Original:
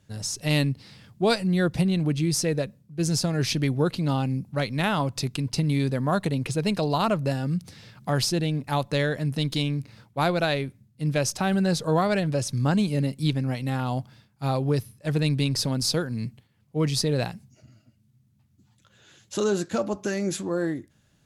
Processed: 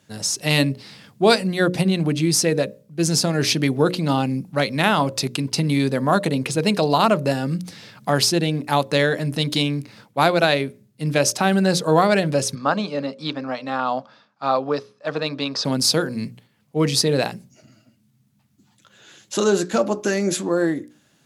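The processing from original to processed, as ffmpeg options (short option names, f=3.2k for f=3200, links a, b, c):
-filter_complex "[0:a]asplit=3[a][b][c];[a]afade=t=out:st=12.54:d=0.02[d];[b]highpass=310,equalizer=f=360:t=q:w=4:g=-9,equalizer=f=610:t=q:w=4:g=3,equalizer=f=1.2k:t=q:w=4:g=8,equalizer=f=2.1k:t=q:w=4:g=-6,equalizer=f=3k:t=q:w=4:g=-5,equalizer=f=4.5k:t=q:w=4:g=-3,lowpass=f=5.1k:w=0.5412,lowpass=f=5.1k:w=1.3066,afade=t=in:st=12.54:d=0.02,afade=t=out:st=15.64:d=0.02[e];[c]afade=t=in:st=15.64:d=0.02[f];[d][e][f]amix=inputs=3:normalize=0,highpass=190,bandreject=f=60:t=h:w=6,bandreject=f=120:t=h:w=6,bandreject=f=180:t=h:w=6,bandreject=f=240:t=h:w=6,bandreject=f=300:t=h:w=6,bandreject=f=360:t=h:w=6,bandreject=f=420:t=h:w=6,bandreject=f=480:t=h:w=6,bandreject=f=540:t=h:w=6,bandreject=f=600:t=h:w=6,volume=7.5dB"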